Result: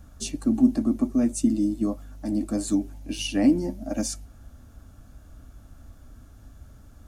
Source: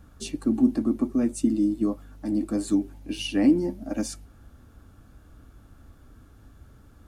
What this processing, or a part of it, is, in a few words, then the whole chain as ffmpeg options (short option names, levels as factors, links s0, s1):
smiley-face EQ: -af "equalizer=f=250:t=o:w=0.67:g=5,equalizer=f=630:t=o:w=0.67:g=10,equalizer=f=6300:t=o:w=0.67:g=5,lowshelf=f=94:g=6,equalizer=f=440:t=o:w=2.1:g=-7,highshelf=f=8000:g=4.5"